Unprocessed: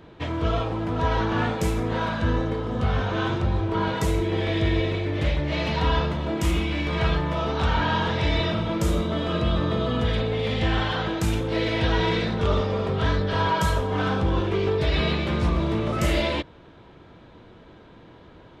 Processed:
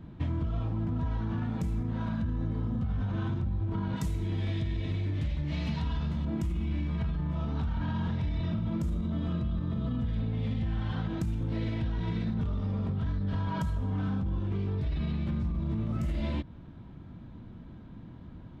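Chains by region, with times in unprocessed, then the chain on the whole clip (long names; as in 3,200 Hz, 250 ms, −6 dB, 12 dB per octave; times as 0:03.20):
0:03.96–0:06.25: high-shelf EQ 2,400 Hz +11 dB + flanger 1.2 Hz, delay 3.5 ms, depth 9.9 ms, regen −73%
whole clip: drawn EQ curve 240 Hz 0 dB, 430 Hz −18 dB, 710 Hz −14 dB, 1,100 Hz −14 dB, 2,700 Hz −17 dB; brickwall limiter −24 dBFS; downward compressor, threshold −33 dBFS; level +5.5 dB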